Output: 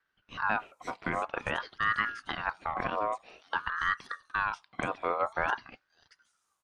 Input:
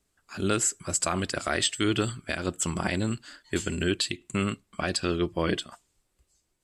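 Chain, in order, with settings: low-pass that closes with the level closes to 1.4 kHz, closed at -26.5 dBFS; bands offset in time lows, highs 530 ms, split 3.6 kHz; ring modulator with a swept carrier 1.2 kHz, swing 30%, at 0.5 Hz

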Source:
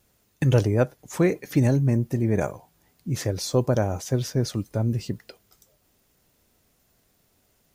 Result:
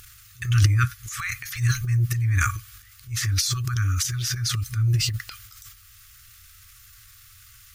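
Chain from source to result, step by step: FFT band-reject 120–1100 Hz; in parallel at -2.5 dB: upward compressor, threshold -33 dBFS; on the sum: transient shaper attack -3 dB, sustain +12 dB

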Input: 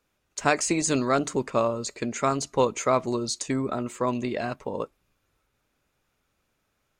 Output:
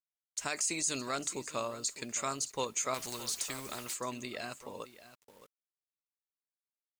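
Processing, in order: pre-emphasis filter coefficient 0.9; peak limiter -26.5 dBFS, peak gain reduction 11 dB; on a send: delay 617 ms -15.5 dB; on the sum: bit crusher 11-bit; 2.94–3.94 s: spectrum-flattening compressor 2:1; trim +4.5 dB

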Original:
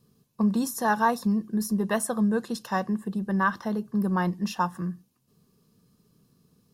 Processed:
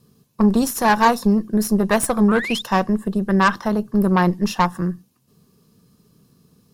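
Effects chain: painted sound rise, 2.28–2.62 s, 1.1–3.8 kHz -35 dBFS; Chebyshev shaper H 6 -18 dB, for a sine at -11 dBFS; trim +7.5 dB

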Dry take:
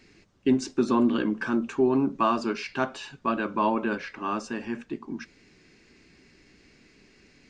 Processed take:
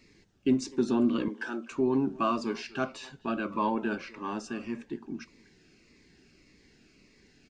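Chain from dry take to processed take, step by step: 1.28–1.71 s: high-pass 420 Hz 12 dB/octave; speakerphone echo 250 ms, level -19 dB; Shepard-style phaser falling 1.7 Hz; trim -2.5 dB

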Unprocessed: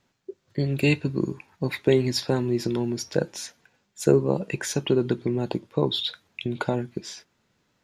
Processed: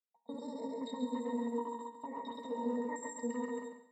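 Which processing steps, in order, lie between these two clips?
backward echo that repeats 136 ms, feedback 67%, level -0.5 dB; expander -30 dBFS; pre-emphasis filter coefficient 0.8; peak limiter -29 dBFS, peak gain reduction 14.5 dB; distance through air 300 m; pitch-class resonator A#, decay 0.32 s; speed mistake 7.5 ips tape played at 15 ips; gated-style reverb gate 230 ms flat, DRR 10 dB; trim +15 dB

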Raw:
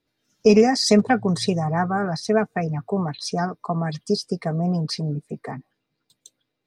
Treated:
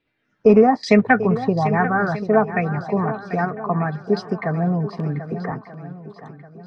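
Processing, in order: LFO low-pass saw down 1.2 Hz 960–2700 Hz; on a send: shuffle delay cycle 1234 ms, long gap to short 1.5:1, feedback 31%, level -12.5 dB; 4.97–5.52 s: on the sum: three bands compressed up and down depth 70%; trim +1.5 dB

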